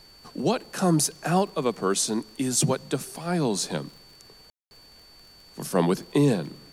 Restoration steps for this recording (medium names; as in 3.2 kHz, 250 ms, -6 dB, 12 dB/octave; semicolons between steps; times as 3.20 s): de-click; band-stop 4.5 kHz, Q 30; room tone fill 4.50–4.71 s; expander -44 dBFS, range -21 dB